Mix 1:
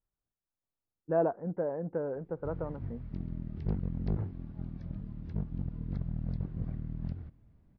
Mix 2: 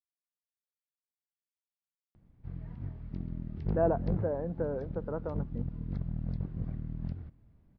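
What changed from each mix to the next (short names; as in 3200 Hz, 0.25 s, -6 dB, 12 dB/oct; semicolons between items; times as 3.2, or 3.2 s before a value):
speech: entry +2.65 s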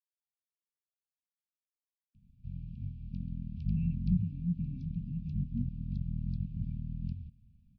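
speech +7.0 dB; master: add brick-wall FIR band-stop 260–2300 Hz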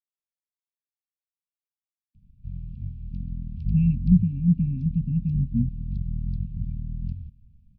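speech +10.0 dB; master: add low shelf 110 Hz +10.5 dB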